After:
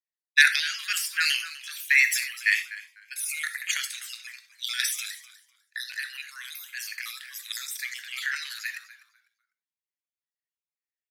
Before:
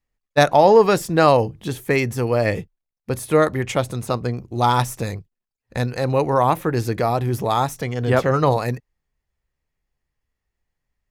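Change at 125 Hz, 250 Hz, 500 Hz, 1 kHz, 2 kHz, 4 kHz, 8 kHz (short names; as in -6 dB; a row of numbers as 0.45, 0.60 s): under -40 dB, under -40 dB, under -40 dB, -25.5 dB, +4.5 dB, +3.5 dB, +4.0 dB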